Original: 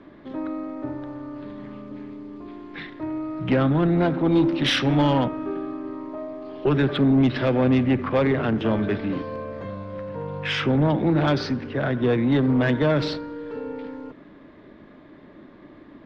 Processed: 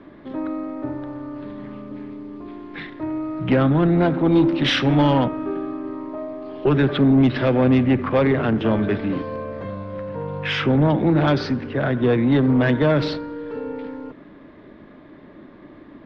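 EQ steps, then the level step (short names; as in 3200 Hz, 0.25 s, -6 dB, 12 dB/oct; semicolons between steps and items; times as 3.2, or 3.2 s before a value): air absorption 78 m; +3.0 dB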